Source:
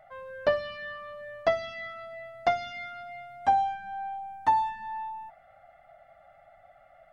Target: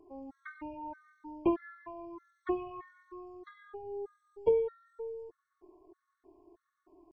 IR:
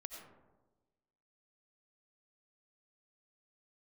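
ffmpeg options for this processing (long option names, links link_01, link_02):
-af "asetrate=22696,aresample=44100,atempo=1.94306,afftfilt=real='re*gt(sin(2*PI*1.6*pts/sr)*(1-2*mod(floor(b*sr/1024/1100),2)),0)':imag='im*gt(sin(2*PI*1.6*pts/sr)*(1-2*mod(floor(b*sr/1024/1100),2)),0)':win_size=1024:overlap=0.75,volume=-3dB"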